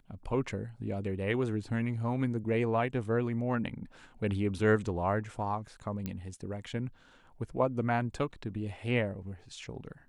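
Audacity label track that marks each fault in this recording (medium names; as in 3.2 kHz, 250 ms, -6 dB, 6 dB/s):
6.060000	6.060000	pop -22 dBFS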